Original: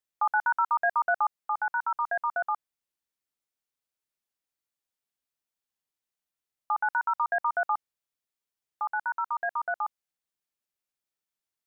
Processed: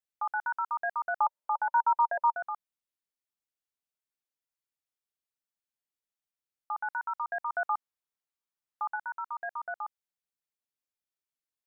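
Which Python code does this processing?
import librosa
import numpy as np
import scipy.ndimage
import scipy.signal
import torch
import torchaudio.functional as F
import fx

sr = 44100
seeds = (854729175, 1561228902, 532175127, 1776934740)

y = fx.small_body(x, sr, hz=(580.0, 920.0), ring_ms=25, db=14, at=(1.2, 2.34))
y = fx.peak_eq(y, sr, hz=1100.0, db=5.0, octaves=1.3, at=(7.5, 8.96))
y = y * librosa.db_to_amplitude(-6.5)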